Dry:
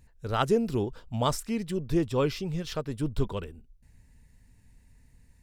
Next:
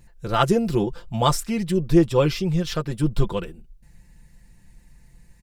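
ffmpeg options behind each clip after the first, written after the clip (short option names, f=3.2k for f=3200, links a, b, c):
-af "aecho=1:1:5.8:0.72,volume=5.5dB"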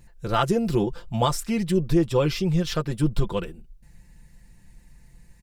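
-af "alimiter=limit=-10.5dB:level=0:latency=1:release=184"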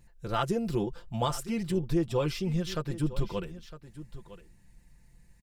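-af "aecho=1:1:958:0.178,volume=-7dB"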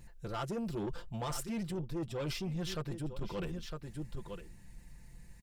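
-af "areverse,acompressor=threshold=-36dB:ratio=6,areverse,asoftclip=type=tanh:threshold=-37dB,volume=5dB"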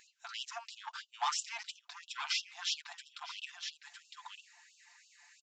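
-af "aresample=16000,aresample=44100,afftfilt=real='re*gte(b*sr/1024,670*pow(2700/670,0.5+0.5*sin(2*PI*3*pts/sr)))':imag='im*gte(b*sr/1024,670*pow(2700/670,0.5+0.5*sin(2*PI*3*pts/sr)))':win_size=1024:overlap=0.75,volume=8.5dB"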